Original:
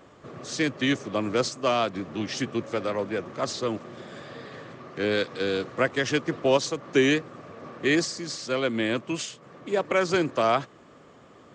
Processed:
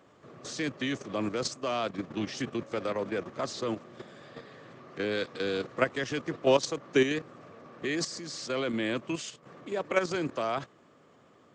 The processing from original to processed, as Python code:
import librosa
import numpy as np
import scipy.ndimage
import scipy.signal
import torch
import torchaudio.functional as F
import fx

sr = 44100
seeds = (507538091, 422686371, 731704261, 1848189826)

y = scipy.signal.sosfilt(scipy.signal.butter(2, 83.0, 'highpass', fs=sr, output='sos'), x)
y = fx.level_steps(y, sr, step_db=10)